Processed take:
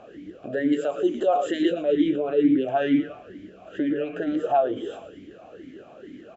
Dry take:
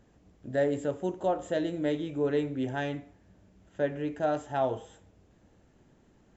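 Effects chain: 0.72–1.71 tilt +3 dB/oct; compressor 6:1, threshold -39 dBFS, peak gain reduction 15.5 dB; frequency-shifting echo 0.112 s, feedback 50%, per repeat -130 Hz, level -12 dB; maximiser +34.5 dB; vowel sweep a-i 2.2 Hz; gain -4 dB

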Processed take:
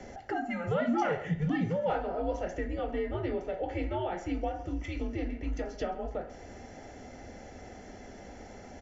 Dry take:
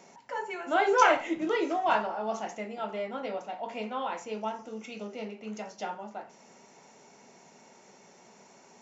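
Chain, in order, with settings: on a send: echo 0.133 s -20 dB; on the sum: compressor 2.5:1, threshold -43 dBFS, peak gain reduction 18 dB; HPF 150 Hz; low shelf 240 Hz +9.5 dB; frequency shift +90 Hz; tone controls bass -2 dB, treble -9 dB; notch comb 1400 Hz; frequency shift -250 Hz; gain +8.5 dB

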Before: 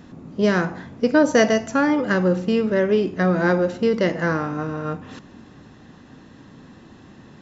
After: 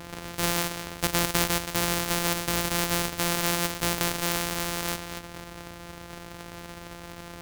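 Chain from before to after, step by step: sample sorter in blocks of 256 samples; spectral compressor 2:1

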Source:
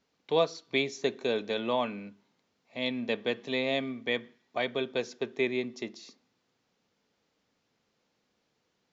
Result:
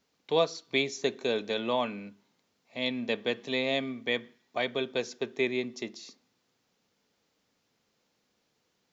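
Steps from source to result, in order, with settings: high shelf 5900 Hz +7.5 dB

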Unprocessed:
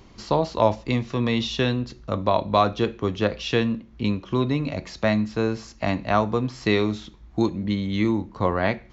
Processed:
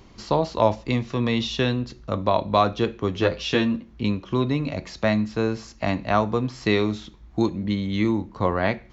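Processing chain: 3.14–3.93 doubler 12 ms -2.5 dB

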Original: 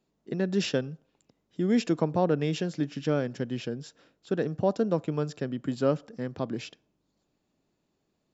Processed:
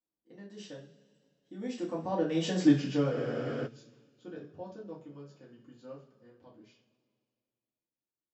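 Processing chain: Doppler pass-by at 2.66, 17 m/s, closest 2 m; two-slope reverb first 0.33 s, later 2.2 s, from -21 dB, DRR -6 dB; spectral freeze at 3.13, 0.53 s

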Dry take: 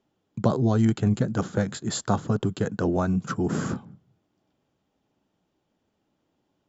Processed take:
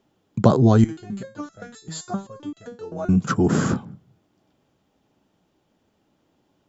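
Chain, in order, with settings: 0.84–3.09 stepped resonator 7.7 Hz 160–660 Hz; gain +7 dB

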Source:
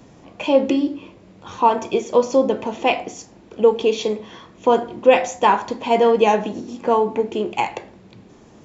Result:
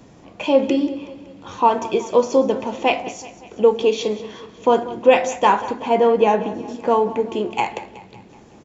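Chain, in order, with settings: 5.61–6.68 high shelf 3100 Hz -9.5 dB; feedback echo 0.187 s, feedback 54%, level -16 dB

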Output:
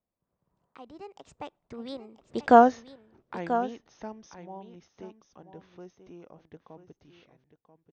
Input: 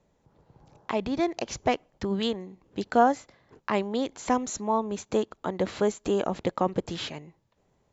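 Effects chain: Doppler pass-by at 2.56, 53 m/s, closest 6.9 m; high shelf 5500 Hz -10 dB; on a send: echo 0.987 s -11.5 dB; on the sum: gain +5 dB

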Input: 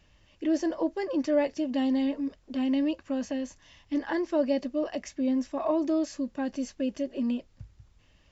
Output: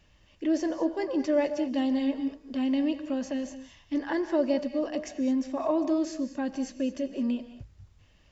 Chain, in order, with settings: non-linear reverb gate 0.24 s rising, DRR 10.5 dB

